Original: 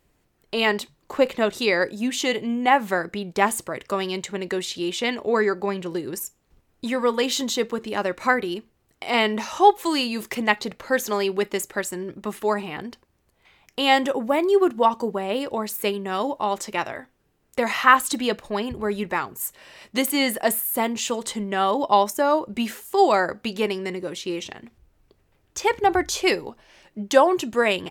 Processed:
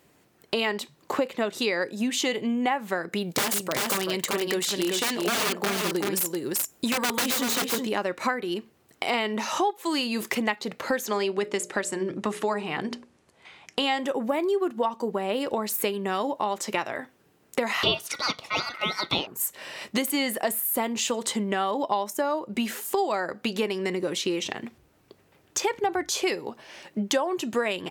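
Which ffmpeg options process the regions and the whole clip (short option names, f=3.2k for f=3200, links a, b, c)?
-filter_complex "[0:a]asettb=1/sr,asplit=3[a][b][c];[a]atrim=end=3.124[d];[b]atrim=start=3.12:end=7.87,asetpts=PTS-STARTPTS,afade=t=in:d=0.004:c=qsin,afade=t=out:st=4.746:d=0.004:c=qsin,highshelf=f=7.9k:g=11,aeval=exprs='(mod(7.5*val(0)+1,2)-1)/7.5':c=same,aecho=1:1:385:0.562,atrim=end_sample=209475[e];[c]atrim=start=7.866[f];[d][e]acrossfade=d=0.004:c1=hsin:c2=qsin[g];[g][f]acrossfade=d=0.004:c1=qsin:c2=hsin,asettb=1/sr,asplit=3[h][i][j];[h]atrim=end=11.064[k];[i]atrim=start=11.06:end=14,asetpts=PTS-STARTPTS,afade=t=in:d=0.004:c=qsin,afade=t=out:st=2.936:d=0.004:c=qsin,lowpass=f=10k:w=0.5412,lowpass=f=10k:w=1.3066,bandreject=f=60:t=h:w=6,bandreject=f=120:t=h:w=6,bandreject=f=180:t=h:w=6,bandreject=f=240:t=h:w=6,bandreject=f=300:t=h:w=6,bandreject=f=360:t=h:w=6,bandreject=f=420:t=h:w=6,bandreject=f=480:t=h:w=6,bandreject=f=540:t=h:w=6,bandreject=f=600:t=h:w=6[l];[j]atrim=start=13.996[m];[k][l]acrossfade=d=0.004:c1=hsin:c2=qsin[n];[n][m]acrossfade=d=0.004:c1=qsin:c2=hsin,asettb=1/sr,asplit=3[o][p][q];[o]atrim=end=17.834[r];[p]atrim=start=17.83:end=19.27,asetpts=PTS-STARTPTS,afade=t=in:d=0.004:c=qsin,afade=t=out:st=1.436:d=0.004:c=qsin,highpass=f=630:p=1,equalizer=f=2.2k:w=0.69:g=13,aeval=exprs='val(0)*sin(2*PI*1700*n/s)':c=same[s];[q]atrim=start=19.266[t];[r][s]acrossfade=d=0.004:c1=hsin:c2=qsin[u];[u][t]acrossfade=d=0.004:c1=qsin:c2=hsin,highpass=140,acompressor=threshold=-32dB:ratio=5,volume=7.5dB"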